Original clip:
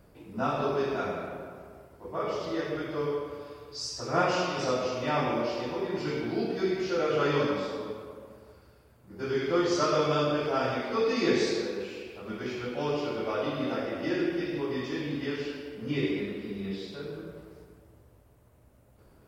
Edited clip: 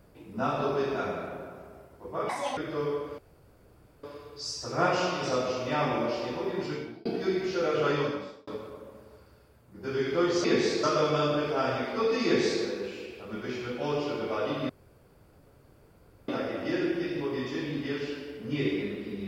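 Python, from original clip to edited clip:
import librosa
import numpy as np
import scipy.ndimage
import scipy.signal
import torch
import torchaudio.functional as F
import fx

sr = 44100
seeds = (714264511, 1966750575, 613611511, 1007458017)

y = fx.edit(x, sr, fx.speed_span(start_s=2.29, length_s=0.49, speed=1.73),
    fx.insert_room_tone(at_s=3.39, length_s=0.85),
    fx.fade_out_span(start_s=5.98, length_s=0.43),
    fx.fade_out_span(start_s=7.24, length_s=0.59),
    fx.duplicate(start_s=11.21, length_s=0.39, to_s=9.8),
    fx.insert_room_tone(at_s=13.66, length_s=1.59), tone=tone)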